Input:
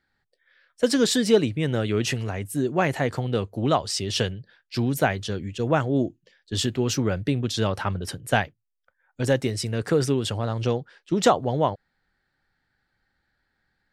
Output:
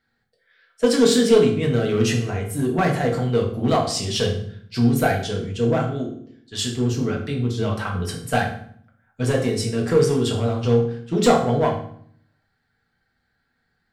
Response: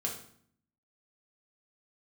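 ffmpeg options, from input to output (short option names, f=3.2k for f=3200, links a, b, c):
-filter_complex "[0:a]asettb=1/sr,asplit=3[a][b][c];[a]atrim=end=5.644[d];[b]atrim=start=5.64:end=7.93,asetpts=PTS-STARTPTS,afade=t=in:d=0.004:c=qsin,afade=t=out:st=2.286:d=0.004:c=qsin,acrossover=split=790[e][f];[e]aeval=exprs='val(0)*(1-0.7/2+0.7/2*cos(2*PI*1.6*n/s))':c=same[g];[f]aeval=exprs='val(0)*(1-0.7/2-0.7/2*cos(2*PI*1.6*n/s))':c=same[h];[g][h]amix=inputs=2:normalize=0[i];[c]atrim=start=7.926[j];[d][i]acrossfade=d=0.004:c1=hsin:c2=qsin[k];[k][j]acrossfade=d=0.004:c1=qsin:c2=hsin,aeval=exprs='clip(val(0),-1,0.15)':c=same[l];[1:a]atrim=start_sample=2205[m];[l][m]afir=irnorm=-1:irlink=0"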